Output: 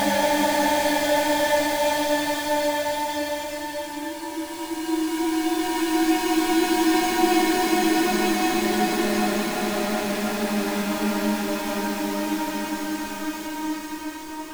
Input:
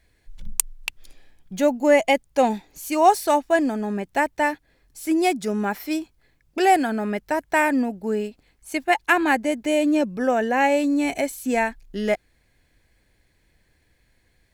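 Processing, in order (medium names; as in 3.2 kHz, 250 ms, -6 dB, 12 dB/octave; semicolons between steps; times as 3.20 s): square wave that keeps the level; chorus voices 2, 0.4 Hz, delay 13 ms, depth 1.4 ms; Paulstretch 7.4×, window 1.00 s, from 4.24 s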